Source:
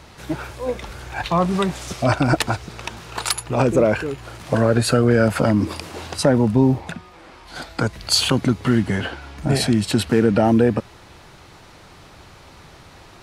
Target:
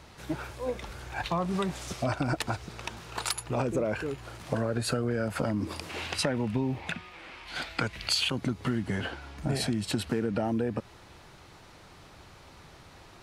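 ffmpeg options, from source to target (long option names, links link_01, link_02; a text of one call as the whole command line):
ffmpeg -i in.wav -filter_complex "[0:a]asettb=1/sr,asplit=3[link_01][link_02][link_03];[link_01]atrim=end=5.894[link_04];[link_02]atrim=start=5.89:end=8.29,asetpts=PTS-STARTPTS,afade=type=in:duration=0.004:curve=qsin,afade=type=out:start_time=2.396:duration=0.004:curve=qsin,equalizer=frequency=2500:width_type=o:width=1.3:gain=12[link_05];[link_03]atrim=start=8.286[link_06];[link_04][link_05]acrossfade=duration=0.004:curve1=hsin:curve2=qsin[link_07];[link_07][link_06]acrossfade=duration=0.004:curve1=qsin:curve2=hsin,acompressor=threshold=-18dB:ratio=6,volume=-7dB" out.wav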